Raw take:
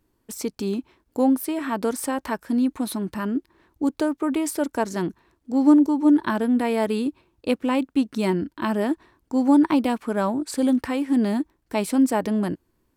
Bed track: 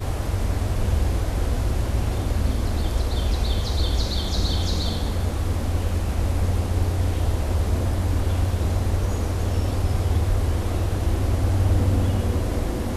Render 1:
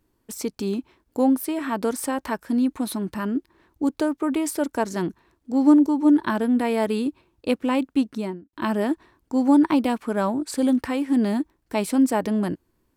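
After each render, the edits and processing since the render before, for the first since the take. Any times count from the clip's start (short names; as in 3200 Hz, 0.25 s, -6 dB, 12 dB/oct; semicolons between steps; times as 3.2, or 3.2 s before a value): 7.99–8.53 studio fade out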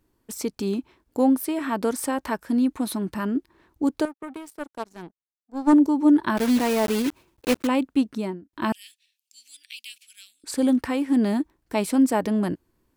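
4.05–5.73 power-law curve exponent 2; 6.37–7.69 block floating point 3-bit; 8.72–10.44 elliptic high-pass 2600 Hz, stop band 60 dB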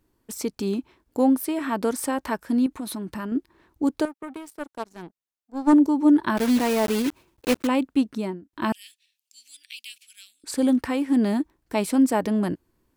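2.66–3.32 compressor 5:1, threshold -28 dBFS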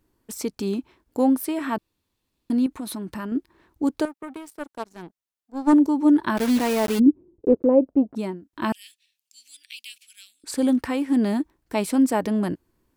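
1.78–2.5 room tone; 6.98–8.15 synth low-pass 270 Hz -> 740 Hz, resonance Q 3.9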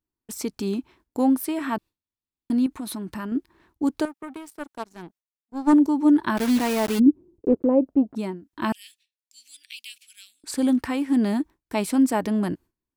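gate with hold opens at -49 dBFS; bell 510 Hz -4 dB 0.49 oct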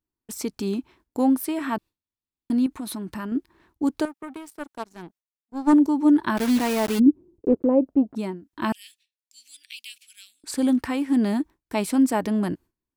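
nothing audible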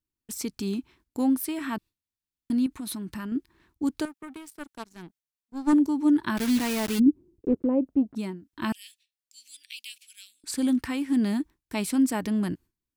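bell 650 Hz -8.5 dB 2.1 oct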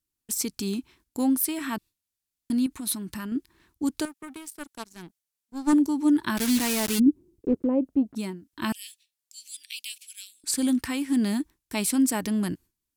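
bell 11000 Hz +8.5 dB 2.3 oct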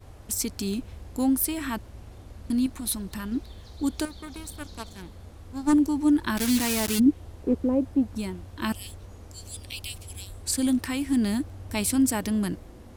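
add bed track -21 dB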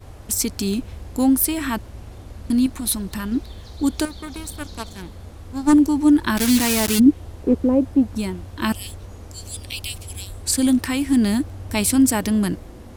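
gain +6.5 dB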